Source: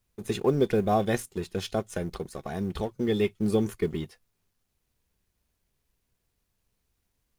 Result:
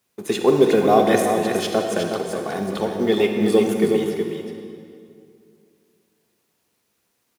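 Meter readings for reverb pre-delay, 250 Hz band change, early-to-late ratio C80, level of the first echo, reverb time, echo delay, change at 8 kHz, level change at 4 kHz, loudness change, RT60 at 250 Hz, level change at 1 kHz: 37 ms, +8.0 dB, 2.5 dB, -7.0 dB, 2.4 s, 368 ms, +10.0 dB, +10.0 dB, +9.0 dB, 2.7 s, +10.5 dB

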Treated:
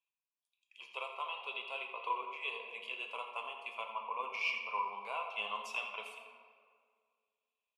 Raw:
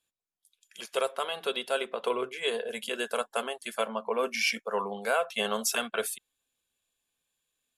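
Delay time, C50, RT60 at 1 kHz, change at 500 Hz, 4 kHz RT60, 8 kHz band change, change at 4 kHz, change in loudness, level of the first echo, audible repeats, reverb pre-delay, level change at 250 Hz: 84 ms, 5.0 dB, 1.9 s, -18.0 dB, 1.1 s, -25.0 dB, -10.5 dB, -8.5 dB, -12.0 dB, 1, 5 ms, -24.0 dB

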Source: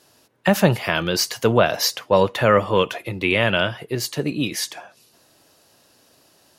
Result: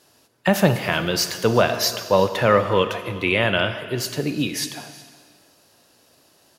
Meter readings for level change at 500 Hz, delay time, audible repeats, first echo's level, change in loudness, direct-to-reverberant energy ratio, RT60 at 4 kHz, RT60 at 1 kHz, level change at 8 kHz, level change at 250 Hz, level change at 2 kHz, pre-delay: -0.5 dB, 366 ms, 1, -21.5 dB, -0.5 dB, 9.0 dB, 1.7 s, 1.7 s, -0.5 dB, -0.5 dB, -0.5 dB, 27 ms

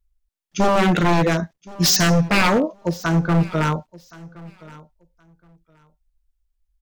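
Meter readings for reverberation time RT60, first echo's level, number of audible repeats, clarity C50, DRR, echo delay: no reverb, -21.5 dB, 1, no reverb, no reverb, 1071 ms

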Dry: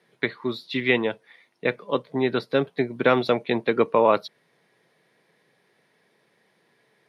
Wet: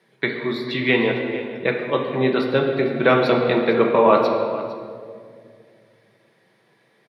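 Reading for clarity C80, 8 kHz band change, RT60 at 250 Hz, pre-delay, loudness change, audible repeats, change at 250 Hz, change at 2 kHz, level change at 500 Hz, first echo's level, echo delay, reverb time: 5.0 dB, no reading, 2.8 s, 5 ms, +4.0 dB, 1, +5.0 dB, +4.0 dB, +5.0 dB, -16.5 dB, 455 ms, 2.2 s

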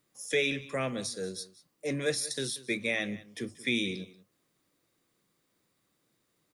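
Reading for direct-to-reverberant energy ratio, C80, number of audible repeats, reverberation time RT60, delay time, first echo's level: no reverb, no reverb, 1, no reverb, 185 ms, -18.5 dB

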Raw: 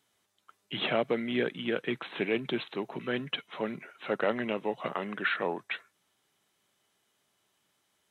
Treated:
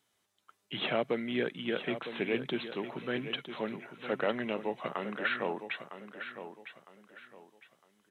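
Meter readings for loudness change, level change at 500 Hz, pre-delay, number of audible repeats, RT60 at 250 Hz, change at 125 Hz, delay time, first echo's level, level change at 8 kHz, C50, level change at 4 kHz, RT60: -2.5 dB, -2.0 dB, no reverb, 3, no reverb, -2.0 dB, 957 ms, -10.5 dB, no reading, no reverb, -2.0 dB, no reverb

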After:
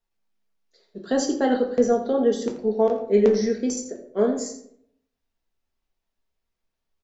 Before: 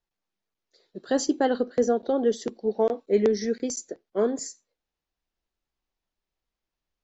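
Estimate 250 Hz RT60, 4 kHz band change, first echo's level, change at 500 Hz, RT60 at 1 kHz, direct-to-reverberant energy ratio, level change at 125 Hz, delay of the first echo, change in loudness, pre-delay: 0.85 s, +1.5 dB, -13.0 dB, +3.5 dB, 0.60 s, 1.5 dB, no reading, 84 ms, +3.5 dB, 4 ms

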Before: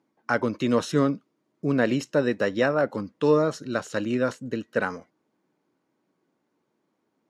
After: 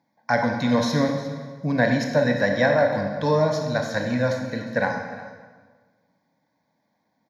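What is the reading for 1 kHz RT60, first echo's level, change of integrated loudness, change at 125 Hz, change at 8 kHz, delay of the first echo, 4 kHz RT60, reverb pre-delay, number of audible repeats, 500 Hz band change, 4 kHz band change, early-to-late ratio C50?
1.4 s, -17.0 dB, +2.5 dB, +5.5 dB, +2.0 dB, 355 ms, 1.3 s, 21 ms, 1, +2.5 dB, +5.0 dB, 4.5 dB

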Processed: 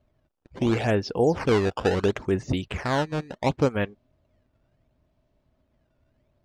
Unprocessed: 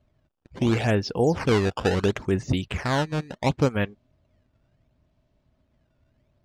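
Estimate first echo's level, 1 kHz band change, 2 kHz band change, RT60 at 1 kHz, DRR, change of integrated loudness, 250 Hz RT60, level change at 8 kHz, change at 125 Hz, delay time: no echo, 0.0 dB, -1.5 dB, no reverb, no reverb, -0.5 dB, no reverb, -3.0 dB, -3.0 dB, no echo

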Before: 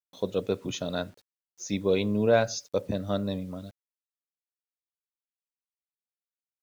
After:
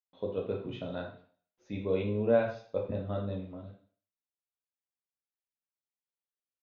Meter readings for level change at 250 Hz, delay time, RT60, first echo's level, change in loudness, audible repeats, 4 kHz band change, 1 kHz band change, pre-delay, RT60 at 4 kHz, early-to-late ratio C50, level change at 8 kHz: -6.0 dB, no echo, 0.45 s, no echo, -4.5 dB, no echo, -14.0 dB, -6.5 dB, 10 ms, 0.45 s, 6.5 dB, no reading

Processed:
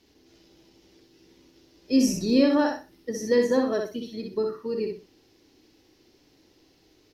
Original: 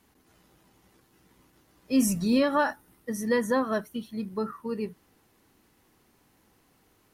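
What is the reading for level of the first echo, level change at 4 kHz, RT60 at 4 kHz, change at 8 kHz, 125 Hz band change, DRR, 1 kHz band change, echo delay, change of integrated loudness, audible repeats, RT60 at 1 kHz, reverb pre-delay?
-4.0 dB, +4.5 dB, no reverb, -0.5 dB, -2.0 dB, no reverb, -3.0 dB, 62 ms, +2.5 dB, 3, no reverb, no reverb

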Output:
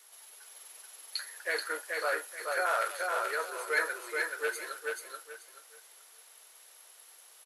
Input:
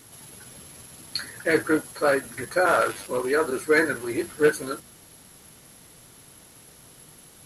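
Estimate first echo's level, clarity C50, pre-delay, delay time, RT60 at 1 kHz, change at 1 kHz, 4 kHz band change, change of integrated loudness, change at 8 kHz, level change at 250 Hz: -3.0 dB, no reverb, no reverb, 431 ms, no reverb, -6.0 dB, -4.5 dB, -9.0 dB, -5.5 dB, -26.0 dB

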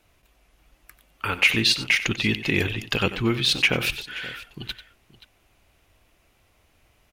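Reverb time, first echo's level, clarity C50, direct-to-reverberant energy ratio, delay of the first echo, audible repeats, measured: no reverb, -14.0 dB, no reverb, no reverb, 93 ms, 2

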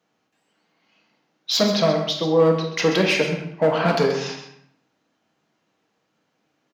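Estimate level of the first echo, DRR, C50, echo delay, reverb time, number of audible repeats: -11.5 dB, 1.0 dB, 5.0 dB, 130 ms, 0.70 s, 1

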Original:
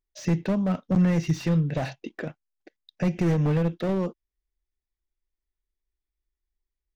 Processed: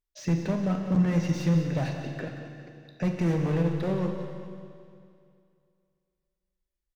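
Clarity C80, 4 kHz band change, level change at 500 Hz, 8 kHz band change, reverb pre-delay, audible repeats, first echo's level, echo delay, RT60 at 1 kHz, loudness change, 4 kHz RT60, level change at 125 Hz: 5.0 dB, -1.5 dB, -2.0 dB, no reading, 14 ms, 3, -12.5 dB, 42 ms, 2.4 s, -2.5 dB, 2.3 s, -1.5 dB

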